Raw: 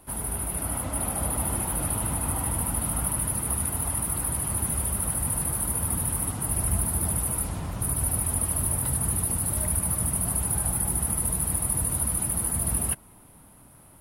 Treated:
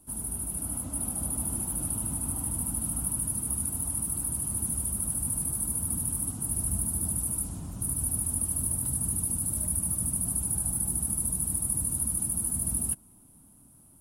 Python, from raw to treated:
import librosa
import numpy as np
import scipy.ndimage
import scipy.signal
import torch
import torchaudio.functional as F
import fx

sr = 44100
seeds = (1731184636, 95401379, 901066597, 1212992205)

y = fx.graphic_eq_10(x, sr, hz=(250, 500, 1000, 2000, 4000, 8000), db=(6, -7, -4, -11, -4, 8))
y = F.gain(torch.from_numpy(y), -6.5).numpy()